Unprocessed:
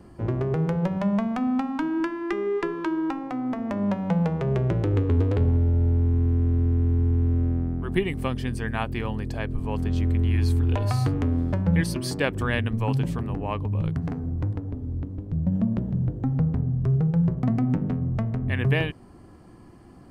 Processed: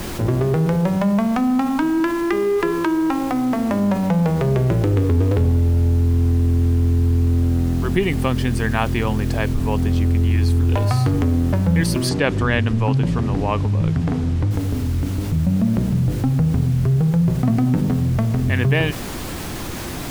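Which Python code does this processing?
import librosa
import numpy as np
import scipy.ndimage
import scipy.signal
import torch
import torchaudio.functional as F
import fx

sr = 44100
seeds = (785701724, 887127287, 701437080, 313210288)

y = fx.dmg_noise_colour(x, sr, seeds[0], colour='pink', level_db=-48.0)
y = fx.air_absorb(y, sr, metres=64.0, at=(12.09, 14.51))
y = fx.env_flatten(y, sr, amount_pct=50)
y = y * librosa.db_to_amplitude(3.5)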